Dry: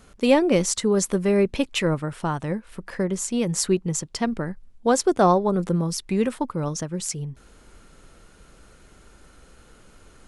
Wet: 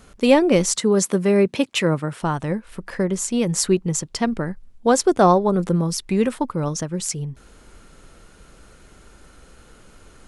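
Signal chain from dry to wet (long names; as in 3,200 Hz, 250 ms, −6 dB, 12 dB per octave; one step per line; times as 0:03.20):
0:00.76–0:02.22: high-pass filter 110 Hz 24 dB per octave
level +3 dB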